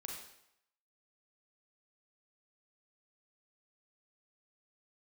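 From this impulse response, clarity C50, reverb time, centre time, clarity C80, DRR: 2.5 dB, 0.75 s, 48 ms, 5.5 dB, -1.0 dB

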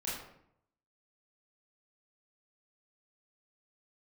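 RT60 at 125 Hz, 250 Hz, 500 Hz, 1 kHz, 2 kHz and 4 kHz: 0.95 s, 0.85 s, 0.75 s, 0.70 s, 0.60 s, 0.45 s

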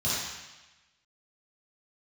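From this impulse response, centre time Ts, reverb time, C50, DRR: 98 ms, 1.1 s, -3.5 dB, -10.5 dB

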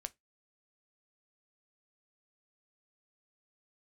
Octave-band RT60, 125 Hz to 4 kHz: 0.20 s, 0.20 s, 0.20 s, 0.15 s, 0.15 s, 0.15 s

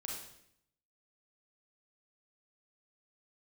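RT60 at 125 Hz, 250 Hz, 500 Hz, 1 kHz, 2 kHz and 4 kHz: 0.95 s, 0.85 s, 0.75 s, 0.65 s, 0.70 s, 0.70 s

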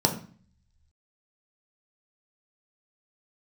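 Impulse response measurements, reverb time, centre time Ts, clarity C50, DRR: 0.45 s, 15 ms, 10.5 dB, 2.0 dB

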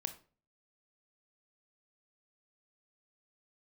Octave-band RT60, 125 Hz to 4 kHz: 0.55 s, 0.50 s, 0.45 s, 0.35 s, 0.30 s, 0.30 s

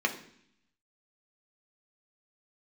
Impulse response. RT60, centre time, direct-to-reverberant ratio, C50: 0.65 s, 11 ms, 2.0 dB, 11.5 dB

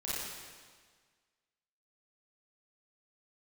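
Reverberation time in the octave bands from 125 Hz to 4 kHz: 1.6 s, 1.6 s, 1.6 s, 1.6 s, 1.6 s, 1.5 s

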